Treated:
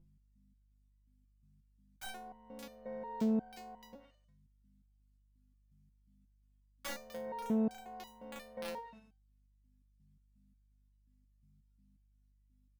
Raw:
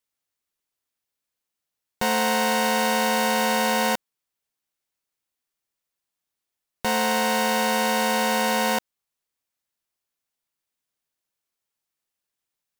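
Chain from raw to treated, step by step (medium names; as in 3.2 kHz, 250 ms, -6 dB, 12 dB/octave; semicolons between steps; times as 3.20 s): feedback delay 97 ms, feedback 33%, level -18 dB; low-pass that closes with the level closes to 370 Hz, closed at -18 dBFS; hum 50 Hz, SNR 15 dB; integer overflow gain 19 dB; resonator arpeggio 5.6 Hz 170–990 Hz; trim +1.5 dB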